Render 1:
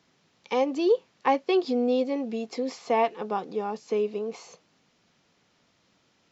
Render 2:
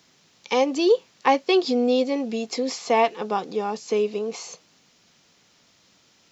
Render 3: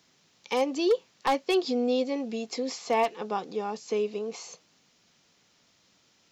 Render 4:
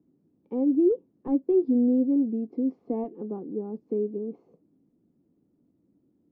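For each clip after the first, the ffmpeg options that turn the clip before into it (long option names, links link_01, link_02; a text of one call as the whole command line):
ffmpeg -i in.wav -af "highshelf=frequency=3600:gain=11.5,volume=3.5dB" out.wav
ffmpeg -i in.wav -af "aeval=exprs='0.299*(abs(mod(val(0)/0.299+3,4)-2)-1)':channel_layout=same,volume=-5.5dB" out.wav
ffmpeg -i in.wav -af "lowpass=frequency=300:width_type=q:width=3.4" out.wav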